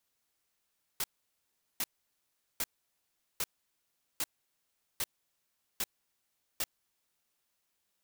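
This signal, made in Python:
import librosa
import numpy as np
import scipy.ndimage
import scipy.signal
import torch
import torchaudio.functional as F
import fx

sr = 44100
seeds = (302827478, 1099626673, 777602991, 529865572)

y = fx.noise_burst(sr, seeds[0], colour='white', on_s=0.04, off_s=0.76, bursts=8, level_db=-32.5)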